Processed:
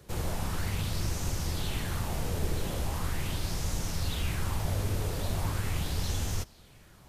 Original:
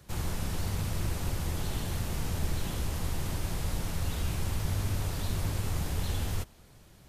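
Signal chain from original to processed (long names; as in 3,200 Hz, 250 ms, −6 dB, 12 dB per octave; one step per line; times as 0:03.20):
auto-filter bell 0.4 Hz 430–6,400 Hz +8 dB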